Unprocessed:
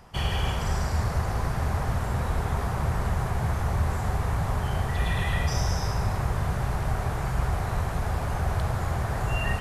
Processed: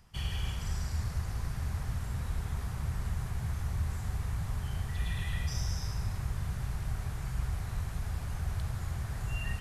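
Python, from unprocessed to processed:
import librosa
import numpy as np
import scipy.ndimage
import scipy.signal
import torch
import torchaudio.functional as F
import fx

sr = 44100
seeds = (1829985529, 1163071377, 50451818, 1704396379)

y = fx.peak_eq(x, sr, hz=630.0, db=-13.0, octaves=2.8)
y = y * 10.0 ** (-5.5 / 20.0)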